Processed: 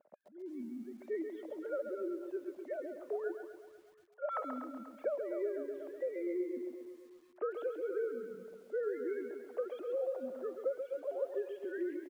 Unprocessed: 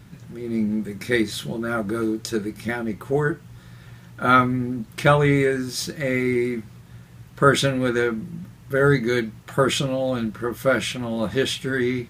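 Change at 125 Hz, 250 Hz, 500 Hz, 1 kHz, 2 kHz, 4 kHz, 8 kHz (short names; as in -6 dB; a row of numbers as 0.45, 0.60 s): under -40 dB, -19.5 dB, -13.0 dB, -23.0 dB, -27.0 dB, under -35 dB, under -35 dB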